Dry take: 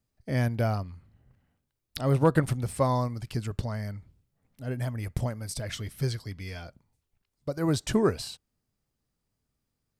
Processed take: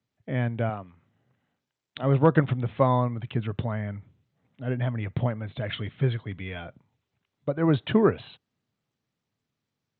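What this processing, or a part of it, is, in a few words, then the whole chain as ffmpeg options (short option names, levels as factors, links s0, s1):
Bluetooth headset: -filter_complex "[0:a]asettb=1/sr,asplit=3[s0][s1][s2];[s0]atrim=end=0.694[s3];[s1]atrim=start=0.69:end=2.03,asetpts=PTS-STARTPTS,afade=t=in:d=0.004:c=qsin,afade=t=out:st=1.336:d=0.004:c=qsin,highpass=f=250:p=1[s4];[s2]atrim=start=2.026[s5];[s3][s4]acrossfade=d=0.004:c1=hsin:c2=qsin[s6];[s6][s5]acrossfade=d=0.004:c1=qsin:c2=hsin,highpass=f=100:w=0.5412,highpass=f=100:w=1.3066,dynaudnorm=f=340:g=13:m=1.78,aresample=8000,aresample=44100" -ar 16000 -c:a sbc -b:a 64k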